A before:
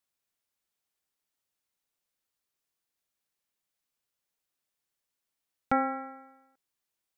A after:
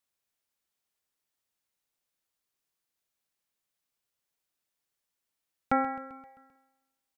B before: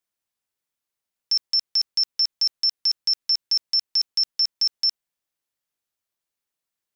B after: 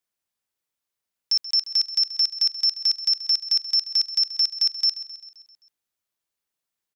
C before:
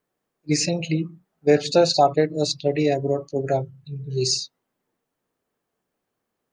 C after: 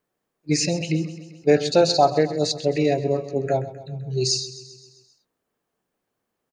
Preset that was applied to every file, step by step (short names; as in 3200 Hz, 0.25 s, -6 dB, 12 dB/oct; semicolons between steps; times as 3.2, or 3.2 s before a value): feedback echo 0.131 s, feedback 59%, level -15 dB